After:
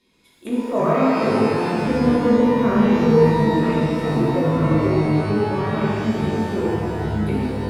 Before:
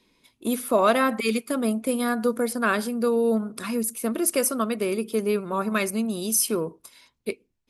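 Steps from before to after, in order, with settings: rattle on loud lows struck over -33 dBFS, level -21 dBFS; square tremolo 0.57 Hz, depth 60%, duty 85%; low-pass that closes with the level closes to 980 Hz, closed at -22.5 dBFS; 1.95–3.65 s: RIAA curve playback; ever faster or slower copies 95 ms, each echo -7 st, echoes 3, each echo -6 dB; pitch-shifted reverb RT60 2.2 s, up +12 st, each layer -8 dB, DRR -7.5 dB; trim -4.5 dB

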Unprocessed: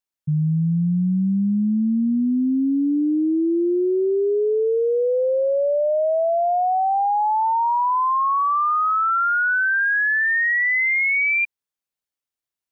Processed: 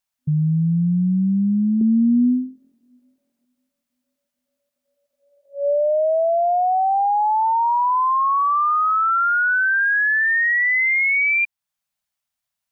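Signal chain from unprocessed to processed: FFT band-reject 250–570 Hz; in parallel at +0.5 dB: compression, threshold -36 dBFS, peak gain reduction 16 dB; 1.81–3.45 s: on the sum: small resonant body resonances 410/590 Hz, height 11 dB, ringing for 20 ms

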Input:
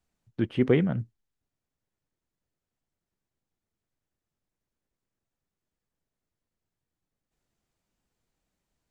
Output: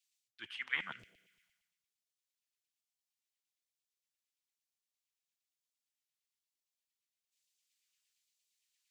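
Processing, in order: reverse; compression 6:1, threshold -33 dBFS, peak gain reduction 16.5 dB; reverse; spring tank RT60 1.8 s, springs 31 ms, chirp 50 ms, DRR 14.5 dB; LFO high-pass saw down 8.7 Hz 750–2600 Hz; phase shifter stages 2, 1.1 Hz, lowest notch 380–1000 Hz; three bands expanded up and down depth 70%; trim +4 dB

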